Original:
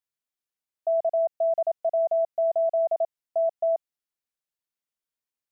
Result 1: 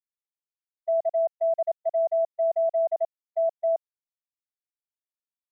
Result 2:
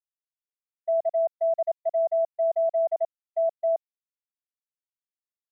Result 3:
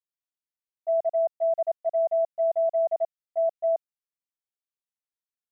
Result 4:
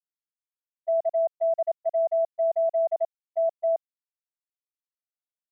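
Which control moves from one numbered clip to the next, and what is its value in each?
gate, range: -39 dB, -53 dB, -10 dB, -25 dB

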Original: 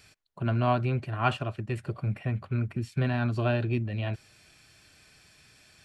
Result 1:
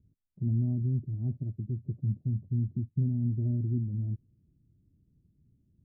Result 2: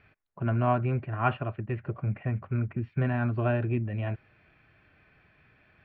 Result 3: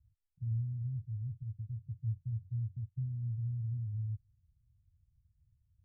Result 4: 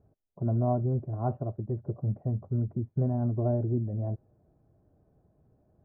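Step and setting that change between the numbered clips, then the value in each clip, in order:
inverse Chebyshev low-pass, stop band from: 1.6 kHz, 11 kHz, 610 Hz, 4.1 kHz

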